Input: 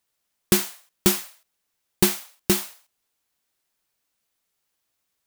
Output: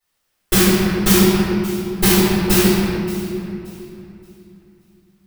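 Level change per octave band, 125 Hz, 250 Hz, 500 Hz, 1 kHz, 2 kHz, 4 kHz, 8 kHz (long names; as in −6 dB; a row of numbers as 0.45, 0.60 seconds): +14.0, +13.0, +11.5, +11.5, +11.0, +8.5, +6.0 decibels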